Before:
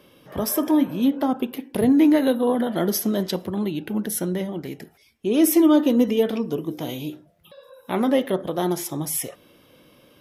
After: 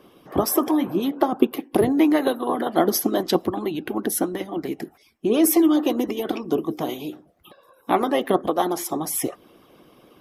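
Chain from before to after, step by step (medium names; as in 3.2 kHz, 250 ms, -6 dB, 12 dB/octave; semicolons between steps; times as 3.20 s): small resonant body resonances 330/750/1100 Hz, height 14 dB, ringing for 30 ms; harmonic-percussive split harmonic -17 dB; trim +2.5 dB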